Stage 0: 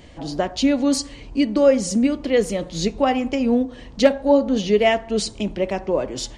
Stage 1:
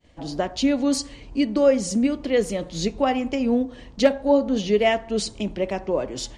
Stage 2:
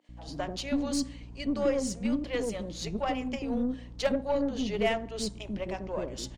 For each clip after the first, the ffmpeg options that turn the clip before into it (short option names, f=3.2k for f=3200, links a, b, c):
-af "agate=range=-33dB:threshold=-37dB:ratio=3:detection=peak,volume=-2.5dB"
-filter_complex "[0:a]aeval=exprs='val(0)+0.0141*(sin(2*PI*60*n/s)+sin(2*PI*2*60*n/s)/2+sin(2*PI*3*60*n/s)/3+sin(2*PI*4*60*n/s)/4+sin(2*PI*5*60*n/s)/5)':c=same,acrossover=split=460[a][b];[a]adelay=90[c];[c][b]amix=inputs=2:normalize=0,aeval=exprs='0.422*(cos(1*acos(clip(val(0)/0.422,-1,1)))-cos(1*PI/2))+0.0168*(cos(8*acos(clip(val(0)/0.422,-1,1)))-cos(8*PI/2))':c=same,volume=-7.5dB"